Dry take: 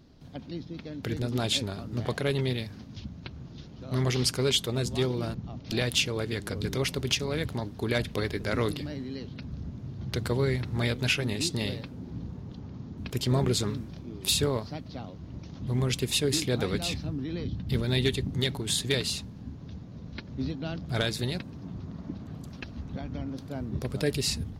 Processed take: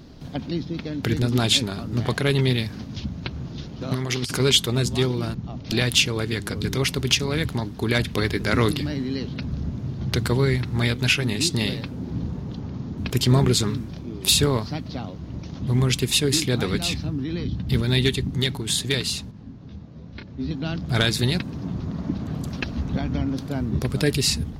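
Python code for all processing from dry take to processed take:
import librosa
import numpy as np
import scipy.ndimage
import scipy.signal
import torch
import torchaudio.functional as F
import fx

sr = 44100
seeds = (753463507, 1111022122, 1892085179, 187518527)

y = fx.chain(x, sr, fx.highpass(hz=150.0, slope=6),
    fx.over_compress(threshold_db=-32.0, ratio=-0.5),
    fx.clip_hard(threshold_db=-21.5), at=(3.81, 4.4))
y = fx.chain(y, sr, fx.air_absorb(metres=62.0),
    fx.detune_double(cents=19), at=(19.31, 20.51))
y = fx.hum_notches(y, sr, base_hz=50, count=2)
y = fx.dynamic_eq(y, sr, hz=560.0, q=1.7, threshold_db=-45.0, ratio=4.0, max_db=-6)
y = fx.rider(y, sr, range_db=5, speed_s=2.0)
y = y * 10.0 ** (7.0 / 20.0)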